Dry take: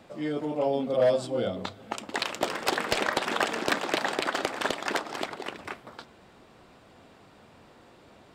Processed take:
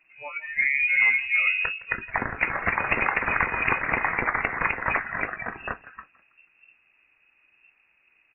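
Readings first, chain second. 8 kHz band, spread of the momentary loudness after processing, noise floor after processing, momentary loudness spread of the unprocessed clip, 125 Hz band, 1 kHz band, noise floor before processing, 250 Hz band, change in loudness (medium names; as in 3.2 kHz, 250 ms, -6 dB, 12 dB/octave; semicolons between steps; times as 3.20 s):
under -40 dB, 14 LU, -65 dBFS, 14 LU, +2.0 dB, +2.5 dB, -55 dBFS, -6.0 dB, +5.0 dB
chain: spectral noise reduction 22 dB; resonant low shelf 250 Hz +8.5 dB, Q 1.5; compression 3:1, threshold -28 dBFS, peak gain reduction 7.5 dB; doubling 19 ms -13.5 dB; on a send: frequency-shifting echo 162 ms, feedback 44%, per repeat -36 Hz, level -21 dB; on the sum: frequency inversion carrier 2.7 kHz; trim +8 dB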